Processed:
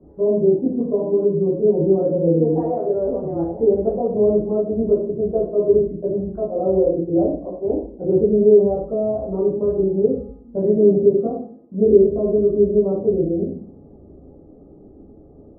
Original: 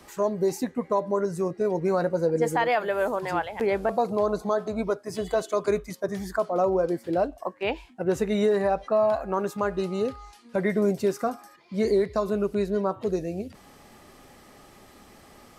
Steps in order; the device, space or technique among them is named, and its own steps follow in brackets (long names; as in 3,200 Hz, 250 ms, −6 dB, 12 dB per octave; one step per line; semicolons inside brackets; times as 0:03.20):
next room (low-pass filter 520 Hz 24 dB per octave; convolution reverb RT60 0.50 s, pre-delay 12 ms, DRR −6.5 dB)
level +1 dB